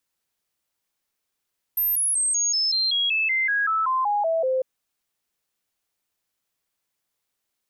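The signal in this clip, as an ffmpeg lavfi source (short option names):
-f lavfi -i "aevalsrc='0.106*clip(min(mod(t,0.19),0.19-mod(t,0.19))/0.005,0,1)*sin(2*PI*13200*pow(2,-floor(t/0.19)/3)*mod(t,0.19))':d=2.85:s=44100"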